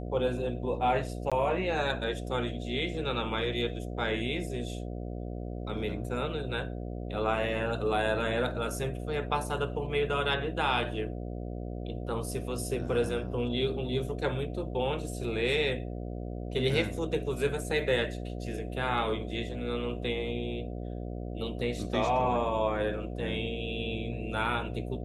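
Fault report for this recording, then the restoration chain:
mains buzz 60 Hz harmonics 12 −37 dBFS
0:01.30–0:01.32: drop-out 16 ms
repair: hum removal 60 Hz, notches 12
repair the gap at 0:01.30, 16 ms

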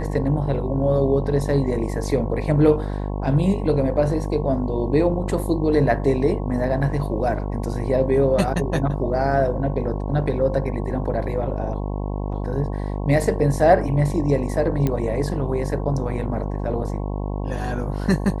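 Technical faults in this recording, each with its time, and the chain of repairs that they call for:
mains buzz 50 Hz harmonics 22 −26 dBFS
0:14.87: click −10 dBFS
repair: click removal
hum removal 50 Hz, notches 22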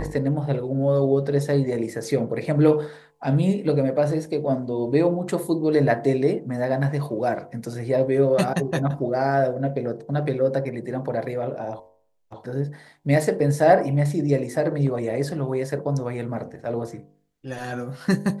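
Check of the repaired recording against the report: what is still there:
none of them is left

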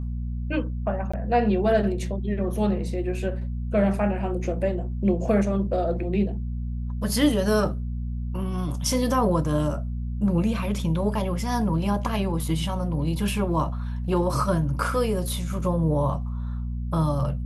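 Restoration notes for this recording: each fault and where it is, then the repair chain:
mains hum 60 Hz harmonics 4 −29 dBFS
0:01.12–0:01.14: drop-out 15 ms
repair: hum removal 60 Hz, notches 4
repair the gap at 0:01.12, 15 ms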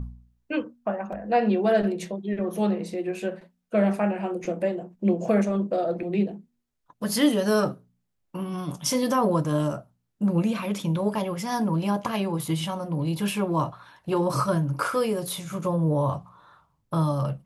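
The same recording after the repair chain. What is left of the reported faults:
none of them is left

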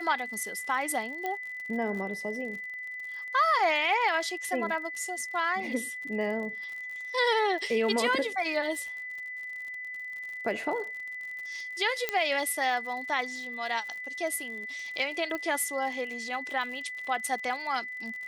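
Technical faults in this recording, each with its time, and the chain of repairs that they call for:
surface crackle 57 per second −38 dBFS
whistle 2,000 Hz −36 dBFS
0:01.26: click −19 dBFS
0:12.09: click −12 dBFS
0:15.35: click −20 dBFS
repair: click removal
notch filter 2,000 Hz, Q 30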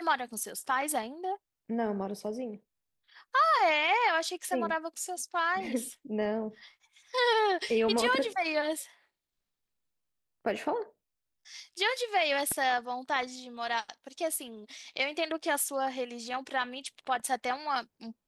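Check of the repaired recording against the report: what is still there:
0:12.09: click

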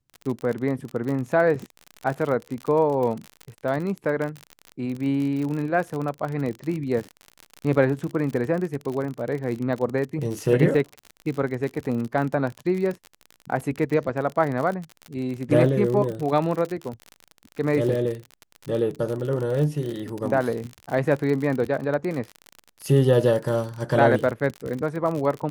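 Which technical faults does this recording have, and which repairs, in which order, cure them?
surface crackle 49 per second −28 dBFS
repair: click removal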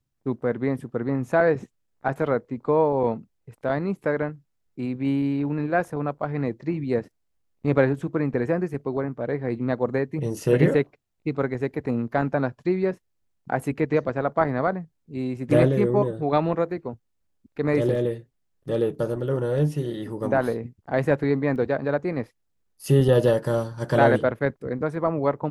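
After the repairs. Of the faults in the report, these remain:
none of them is left

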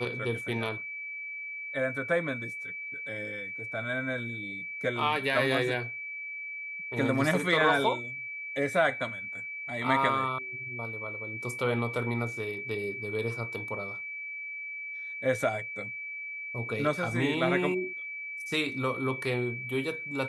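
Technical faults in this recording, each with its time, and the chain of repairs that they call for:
whistle 2,300 Hz −36 dBFS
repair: notch filter 2,300 Hz, Q 30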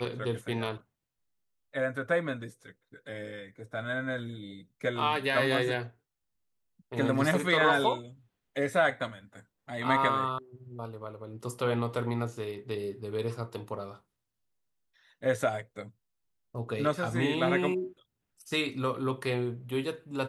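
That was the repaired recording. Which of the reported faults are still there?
none of them is left

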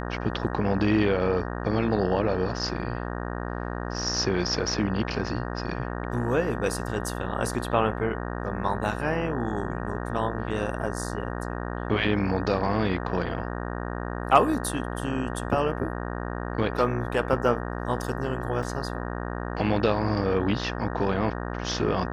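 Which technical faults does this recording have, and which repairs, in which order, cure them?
mains buzz 60 Hz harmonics 31 −32 dBFS
0:18.63: drop-out 2.5 ms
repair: hum removal 60 Hz, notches 31
repair the gap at 0:18.63, 2.5 ms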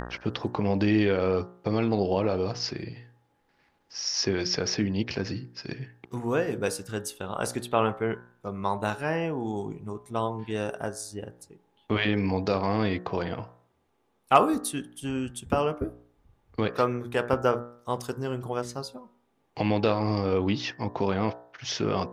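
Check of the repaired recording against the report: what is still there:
none of them is left

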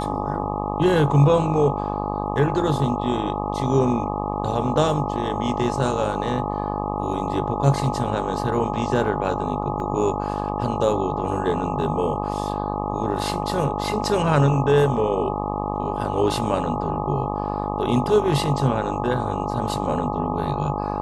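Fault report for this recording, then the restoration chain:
mains buzz 50 Hz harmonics 25 −27 dBFS
whistle 840 Hz −29 dBFS
0:09.80: drop-out 2.4 ms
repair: notch filter 840 Hz, Q 30
hum removal 50 Hz, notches 25
repair the gap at 0:09.80, 2.4 ms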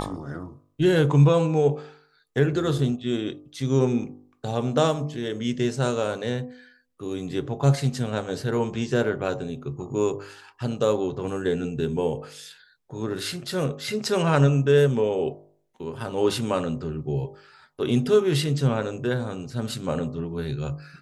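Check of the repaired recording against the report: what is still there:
none of them is left

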